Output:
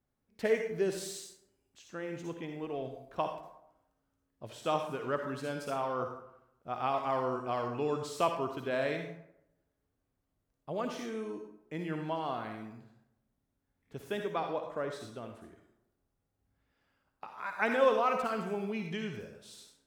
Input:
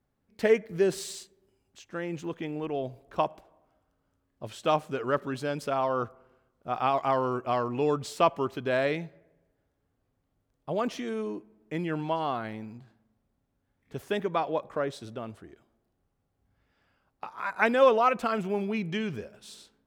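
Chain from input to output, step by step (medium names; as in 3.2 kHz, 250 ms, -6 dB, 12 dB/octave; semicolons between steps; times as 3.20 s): on a send: treble shelf 3.3 kHz +12 dB + reverberation RT60 0.80 s, pre-delay 48 ms, DRR 4.5 dB; on the sum: trim -6.5 dB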